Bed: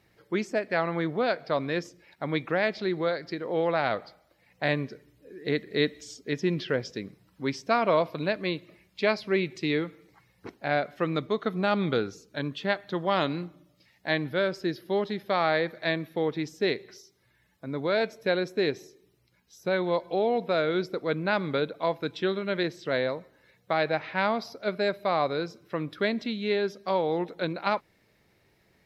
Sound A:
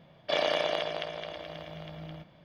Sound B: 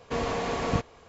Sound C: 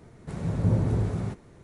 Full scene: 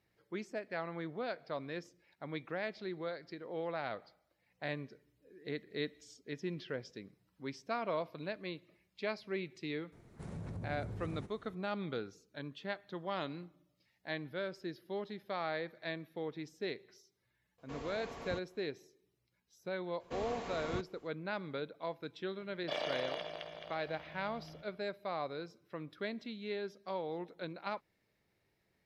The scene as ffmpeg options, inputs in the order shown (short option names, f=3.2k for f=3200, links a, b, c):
-filter_complex "[2:a]asplit=2[a][b];[0:a]volume=-13dB[c];[3:a]acompressor=threshold=-30dB:ratio=6:attack=3.2:release=140:knee=1:detection=peak[d];[b]asoftclip=type=tanh:threshold=-13.5dB[e];[d]atrim=end=1.63,asetpts=PTS-STARTPTS,volume=-9.5dB,afade=t=in:d=0.004:c=hsin,afade=t=out:st=1.626:d=0.004:c=hsin,adelay=9920[f];[a]atrim=end=1.08,asetpts=PTS-STARTPTS,volume=-17.5dB,afade=t=in:d=0.004:c=hsin,afade=t=out:st=1.076:d=0.004:c=hsin,adelay=17580[g];[e]atrim=end=1.08,asetpts=PTS-STARTPTS,volume=-13dB,afade=t=in:d=0.004:c=hsin,afade=t=out:st=1.076:d=0.004:c=hsin,adelay=20000[h];[1:a]atrim=end=2.44,asetpts=PTS-STARTPTS,volume=-10dB,afade=t=in:d=0.004:c=hsin,afade=t=out:st=2.436:d=0.004:c=hsin,adelay=22390[i];[c][f][g][h][i]amix=inputs=5:normalize=0"